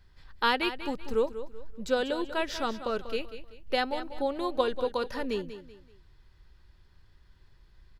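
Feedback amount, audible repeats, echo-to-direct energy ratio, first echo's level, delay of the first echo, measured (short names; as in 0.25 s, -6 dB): 34%, 3, -11.5 dB, -12.0 dB, 0.191 s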